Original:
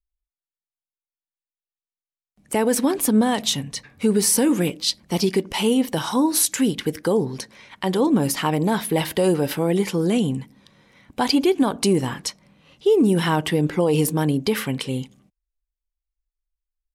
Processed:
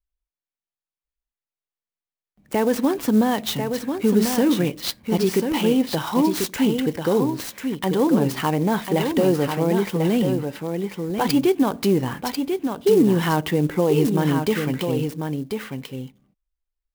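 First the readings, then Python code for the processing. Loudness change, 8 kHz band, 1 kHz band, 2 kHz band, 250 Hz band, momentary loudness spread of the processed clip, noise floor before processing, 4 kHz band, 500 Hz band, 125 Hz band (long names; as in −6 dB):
−0.5 dB, −9.0 dB, +0.5 dB, −0.5 dB, +1.0 dB, 9 LU, below −85 dBFS, −3.5 dB, +1.0 dB, +1.0 dB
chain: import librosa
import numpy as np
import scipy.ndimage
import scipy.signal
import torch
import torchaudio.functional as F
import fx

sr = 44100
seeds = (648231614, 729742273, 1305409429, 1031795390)

y = fx.high_shelf(x, sr, hz=5400.0, db=-11.0)
y = y + 10.0 ** (-6.0 / 20.0) * np.pad(y, (int(1042 * sr / 1000.0), 0))[:len(y)]
y = fx.clock_jitter(y, sr, seeds[0], jitter_ms=0.025)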